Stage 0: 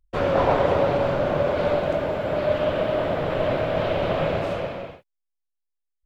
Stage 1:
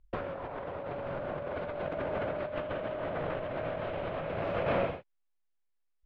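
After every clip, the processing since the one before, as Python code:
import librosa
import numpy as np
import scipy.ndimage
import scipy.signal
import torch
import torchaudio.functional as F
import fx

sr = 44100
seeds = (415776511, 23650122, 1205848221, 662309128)

y = scipy.signal.sosfilt(scipy.signal.butter(2, 2800.0, 'lowpass', fs=sr, output='sos'), x)
y = fx.dynamic_eq(y, sr, hz=1600.0, q=0.74, threshold_db=-38.0, ratio=4.0, max_db=3)
y = fx.over_compress(y, sr, threshold_db=-31.0, ratio=-1.0)
y = y * 10.0 ** (-4.5 / 20.0)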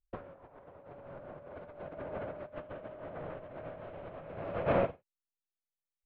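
y = fx.high_shelf(x, sr, hz=2600.0, db=-11.5)
y = fx.upward_expand(y, sr, threshold_db=-44.0, expansion=2.5)
y = y * 10.0 ** (3.0 / 20.0)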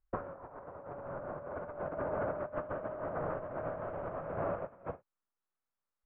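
y = fx.over_compress(x, sr, threshold_db=-39.0, ratio=-0.5)
y = fx.lowpass_res(y, sr, hz=1300.0, q=1.8)
y = y * 10.0 ** (1.5 / 20.0)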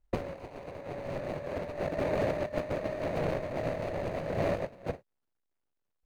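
y = scipy.ndimage.median_filter(x, 41, mode='constant')
y = y * 10.0 ** (8.5 / 20.0)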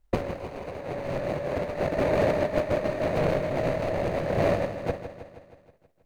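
y = fx.echo_feedback(x, sr, ms=159, feedback_pct=59, wet_db=-10.5)
y = y * 10.0 ** (6.0 / 20.0)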